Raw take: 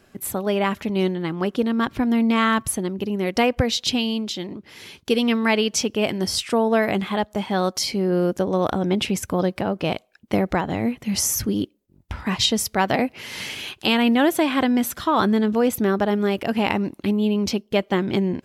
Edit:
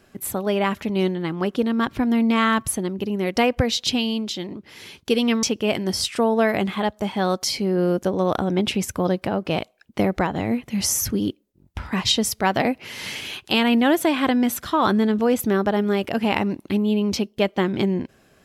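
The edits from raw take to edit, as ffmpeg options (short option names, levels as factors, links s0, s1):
-filter_complex "[0:a]asplit=2[s0][s1];[s0]atrim=end=5.432[s2];[s1]atrim=start=5.768[s3];[s2][s3]acrossfade=d=0.004:c1=hsin:c2=hsin"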